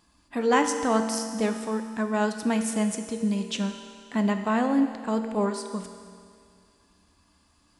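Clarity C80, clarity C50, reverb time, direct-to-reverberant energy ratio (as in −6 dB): 8.0 dB, 7.0 dB, 2.2 s, 5.5 dB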